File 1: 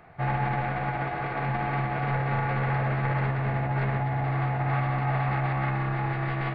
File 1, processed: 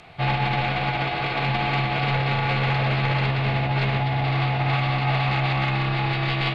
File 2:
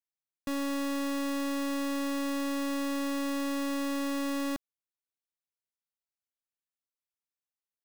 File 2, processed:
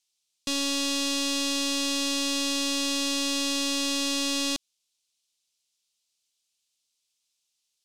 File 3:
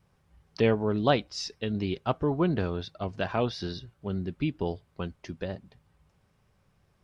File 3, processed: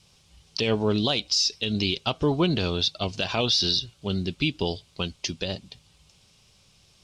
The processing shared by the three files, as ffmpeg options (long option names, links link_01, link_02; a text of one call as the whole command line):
ffmpeg -i in.wav -af "aexciter=amount=3.5:drive=9.9:freq=2600,alimiter=limit=-16.5dB:level=0:latency=1:release=92,lowpass=6400,volume=4dB" out.wav